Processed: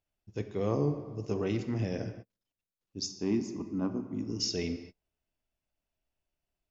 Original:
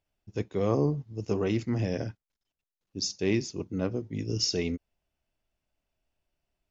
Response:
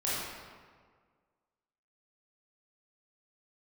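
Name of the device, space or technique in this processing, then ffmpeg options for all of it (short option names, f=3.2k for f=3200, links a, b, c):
keyed gated reverb: -filter_complex "[0:a]asettb=1/sr,asplit=3[a][b][c];[a]atrim=end=3.064[d];[b]atrim=start=3.06:end=4.4,asetpts=PTS-STARTPTS,afade=t=in:d=0.004:c=qsin,afade=t=out:st=1.336:d=0.004:c=qsin,equalizer=f=125:t=o:w=1:g=-8,equalizer=f=250:t=o:w=1:g=9,equalizer=f=500:t=o:w=1:g=-10,equalizer=f=1k:t=o:w=1:g=10,equalizer=f=2k:t=o:w=1:g=-9,equalizer=f=4k:t=o:w=1:g=-11[e];[c]atrim=start=4.396[f];[d][e]acrossfade=d=0.004:c1=hsin:c2=qsin[g];[g][f]acrossfade=d=0.004:c1=qsin:c2=hsin,asplit=3[h][i][j];[1:a]atrim=start_sample=2205[k];[i][k]afir=irnorm=-1:irlink=0[l];[j]apad=whole_len=295579[m];[l][m]sidechaingate=range=-43dB:threshold=-49dB:ratio=16:detection=peak,volume=-14.5dB[n];[h][n]amix=inputs=2:normalize=0,volume=-5.5dB"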